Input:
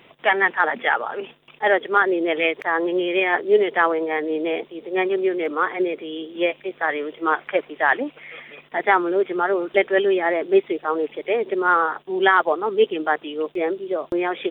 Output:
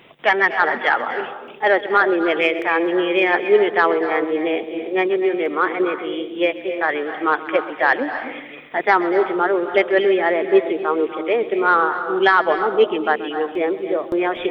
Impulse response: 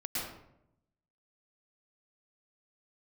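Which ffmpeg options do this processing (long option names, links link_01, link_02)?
-filter_complex "[0:a]asoftclip=type=tanh:threshold=-4dB,asplit=2[link_01][link_02];[1:a]atrim=start_sample=2205,adelay=130[link_03];[link_02][link_03]afir=irnorm=-1:irlink=0,volume=-13dB[link_04];[link_01][link_04]amix=inputs=2:normalize=0,volume=2.5dB"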